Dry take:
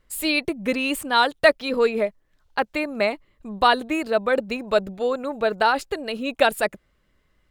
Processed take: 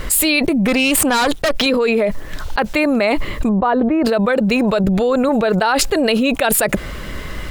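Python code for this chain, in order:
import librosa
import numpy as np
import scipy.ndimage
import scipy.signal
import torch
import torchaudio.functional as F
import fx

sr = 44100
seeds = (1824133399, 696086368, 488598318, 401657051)

y = fx.tube_stage(x, sr, drive_db=21.0, bias=0.8, at=(0.67, 1.66))
y = fx.lowpass(y, sr, hz=1100.0, slope=12, at=(3.49, 4.05))
y = fx.low_shelf(y, sr, hz=150.0, db=10.0, at=(4.84, 5.29))
y = fx.env_flatten(y, sr, amount_pct=100)
y = F.gain(torch.from_numpy(y), -1.5).numpy()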